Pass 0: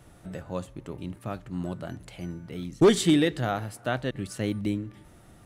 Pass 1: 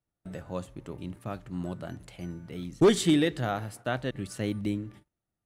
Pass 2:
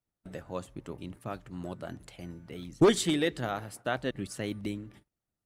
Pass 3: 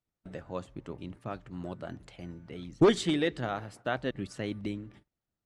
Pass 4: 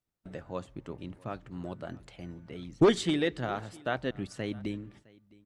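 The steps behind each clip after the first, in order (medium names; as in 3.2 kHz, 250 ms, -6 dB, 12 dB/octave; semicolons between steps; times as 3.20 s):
gate -46 dBFS, range -33 dB; trim -2 dB
harmonic-percussive split percussive +8 dB; trim -7 dB
distance through air 76 m
delay 661 ms -24 dB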